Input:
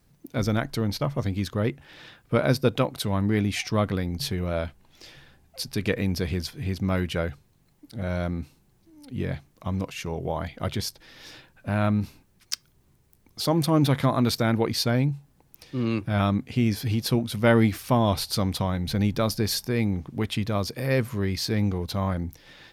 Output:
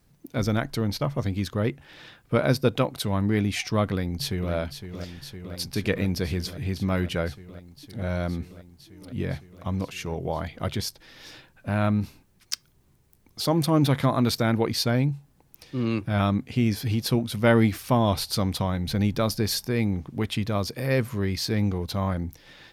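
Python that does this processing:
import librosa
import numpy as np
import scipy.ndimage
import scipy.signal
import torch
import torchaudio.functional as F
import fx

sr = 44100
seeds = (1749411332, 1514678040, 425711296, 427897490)

y = fx.echo_throw(x, sr, start_s=3.91, length_s=0.62, ms=510, feedback_pct=85, wet_db=-10.0)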